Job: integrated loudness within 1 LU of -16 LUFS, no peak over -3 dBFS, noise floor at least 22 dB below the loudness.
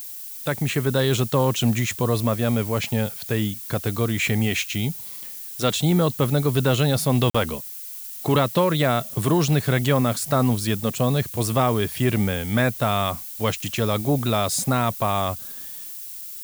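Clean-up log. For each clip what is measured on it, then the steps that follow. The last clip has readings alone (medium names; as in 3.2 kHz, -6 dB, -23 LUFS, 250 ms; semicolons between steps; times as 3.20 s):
dropouts 1; longest dropout 45 ms; noise floor -36 dBFS; noise floor target -45 dBFS; loudness -22.5 LUFS; peak level -8.5 dBFS; loudness target -16.0 LUFS
-> interpolate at 7.30 s, 45 ms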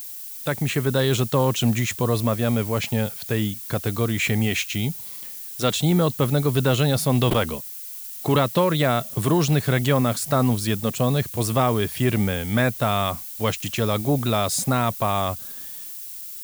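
dropouts 0; noise floor -36 dBFS; noise floor target -45 dBFS
-> noise reduction 9 dB, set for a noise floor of -36 dBFS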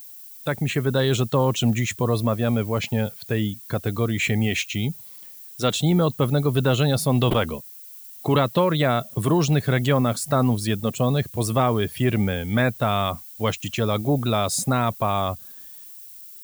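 noise floor -42 dBFS; noise floor target -45 dBFS
-> noise reduction 6 dB, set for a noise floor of -42 dBFS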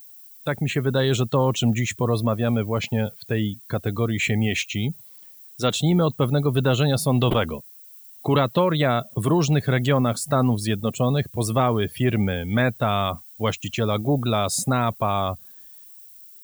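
noise floor -46 dBFS; loudness -23.0 LUFS; peak level -9.0 dBFS; loudness target -16.0 LUFS
-> trim +7 dB; peak limiter -3 dBFS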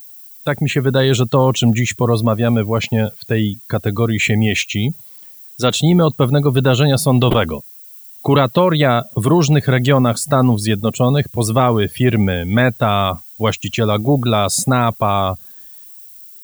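loudness -16.0 LUFS; peak level -3.0 dBFS; noise floor -39 dBFS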